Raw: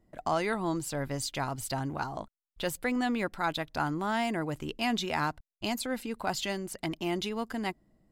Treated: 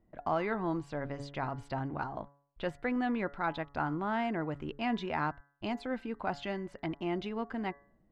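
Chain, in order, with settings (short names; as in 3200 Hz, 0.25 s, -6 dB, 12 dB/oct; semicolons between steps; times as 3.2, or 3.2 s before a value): LPF 2200 Hz 12 dB/oct; de-hum 141.5 Hz, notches 14; gain -2 dB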